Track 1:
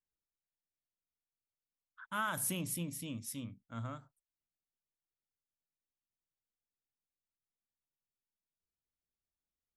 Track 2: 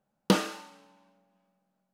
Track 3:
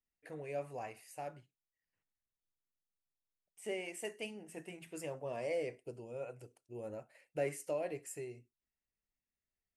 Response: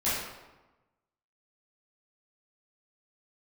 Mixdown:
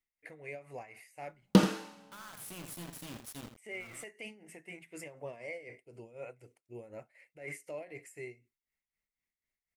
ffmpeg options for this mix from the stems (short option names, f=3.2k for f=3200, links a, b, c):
-filter_complex "[0:a]acompressor=threshold=-40dB:ratio=6,acrusher=bits=6:mix=0:aa=0.000001,volume=-3.5dB,asplit=2[a][b];[b]volume=-9.5dB[c];[1:a]lowshelf=f=300:g=11,adelay=1250,volume=-4.5dB,asplit=2[d][e];[e]volume=-10dB[f];[2:a]equalizer=f=2.1k:t=o:w=0.33:g=13.5,alimiter=level_in=9.5dB:limit=-24dB:level=0:latency=1:release=18,volume=-9.5dB,tremolo=f=4:d=0.76,volume=1dB,asplit=2[g][h];[h]apad=whole_len=430512[i];[a][i]sidechaincompress=threshold=-58dB:ratio=5:attack=49:release=1090[j];[c][f]amix=inputs=2:normalize=0,aecho=0:1:82:1[k];[j][d][g][k]amix=inputs=4:normalize=0"